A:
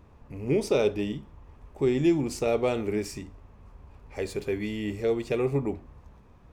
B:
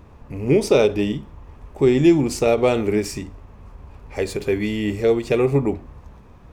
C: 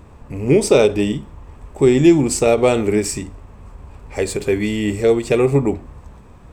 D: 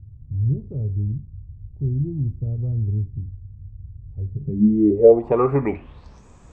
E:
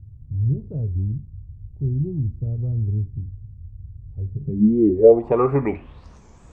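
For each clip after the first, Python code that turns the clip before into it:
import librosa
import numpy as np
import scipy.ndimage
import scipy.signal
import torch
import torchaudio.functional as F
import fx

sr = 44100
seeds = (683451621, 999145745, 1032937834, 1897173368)

y1 = fx.end_taper(x, sr, db_per_s=260.0)
y1 = y1 * 10.0 ** (8.5 / 20.0)
y2 = fx.peak_eq(y1, sr, hz=8000.0, db=13.0, octaves=0.22)
y2 = y2 * 10.0 ** (3.0 / 20.0)
y3 = fx.filter_sweep_lowpass(y2, sr, from_hz=110.0, to_hz=7000.0, start_s=4.32, end_s=6.26, q=5.6)
y3 = y3 * 10.0 ** (-5.0 / 20.0)
y4 = fx.record_warp(y3, sr, rpm=45.0, depth_cents=160.0)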